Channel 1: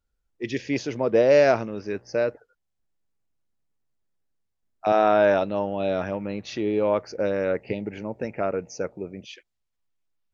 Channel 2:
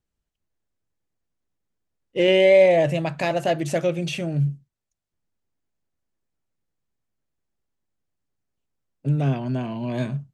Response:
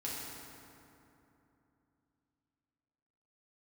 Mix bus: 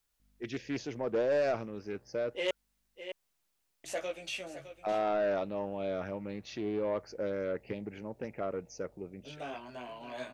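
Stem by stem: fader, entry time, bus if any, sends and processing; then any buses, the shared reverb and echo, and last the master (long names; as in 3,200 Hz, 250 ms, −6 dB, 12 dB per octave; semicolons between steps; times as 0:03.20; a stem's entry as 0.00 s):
−9.0 dB, 0.00 s, no send, no echo send, bit-depth reduction 12 bits, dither triangular
−4.0 dB, 0.20 s, muted 0:02.51–0:03.84, no send, echo send −12.5 dB, high-pass filter 600 Hz 12 dB per octave; mains hum 50 Hz, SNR 33 dB; chorus effect 0.5 Hz, delay 15.5 ms, depth 3.4 ms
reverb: not used
echo: single-tap delay 610 ms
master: soft clipping −23.5 dBFS, distortion −14 dB; highs frequency-modulated by the lows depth 0.2 ms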